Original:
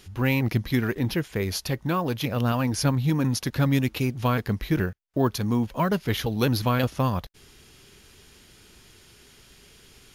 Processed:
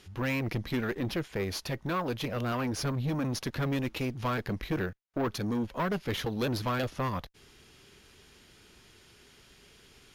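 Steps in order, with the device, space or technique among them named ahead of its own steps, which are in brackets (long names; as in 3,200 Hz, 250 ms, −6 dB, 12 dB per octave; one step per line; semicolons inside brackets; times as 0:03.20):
tube preamp driven hard (tube saturation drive 24 dB, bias 0.55; low-shelf EQ 180 Hz −4 dB; high-shelf EQ 6,700 Hz −8 dB)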